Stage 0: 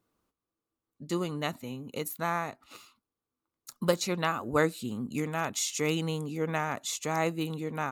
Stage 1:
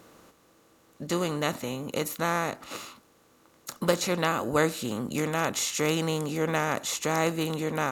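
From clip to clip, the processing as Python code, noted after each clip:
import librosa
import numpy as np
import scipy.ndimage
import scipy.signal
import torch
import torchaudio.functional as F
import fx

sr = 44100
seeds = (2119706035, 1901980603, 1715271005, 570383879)

y = fx.bin_compress(x, sr, power=0.6)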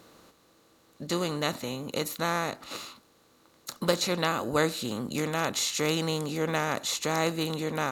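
y = fx.peak_eq(x, sr, hz=4100.0, db=7.0, octaves=0.41)
y = y * librosa.db_to_amplitude(-1.5)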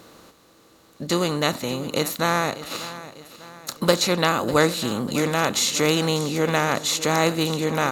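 y = fx.echo_feedback(x, sr, ms=596, feedback_pct=46, wet_db=-15.5)
y = y * librosa.db_to_amplitude(7.0)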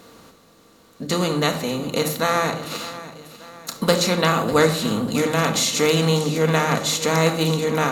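y = fx.room_shoebox(x, sr, seeds[0], volume_m3=2100.0, walls='furnished', distance_m=1.7)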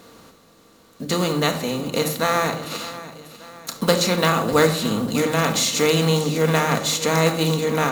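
y = fx.block_float(x, sr, bits=5)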